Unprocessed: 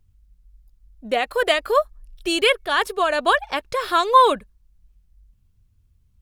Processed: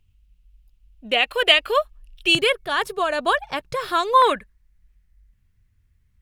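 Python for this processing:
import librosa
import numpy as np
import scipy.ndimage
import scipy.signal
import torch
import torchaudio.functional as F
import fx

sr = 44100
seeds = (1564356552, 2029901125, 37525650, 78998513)

y = fx.peak_eq(x, sr, hz=fx.steps((0.0, 2800.0), (2.35, 140.0), (4.22, 1900.0)), db=14.5, octaves=0.7)
y = F.gain(torch.from_numpy(y), -2.5).numpy()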